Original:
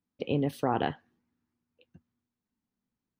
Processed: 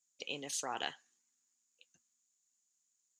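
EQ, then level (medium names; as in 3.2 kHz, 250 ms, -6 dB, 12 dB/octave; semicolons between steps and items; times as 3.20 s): resonant low-pass 6.9 kHz, resonance Q 12; differentiator; +8.0 dB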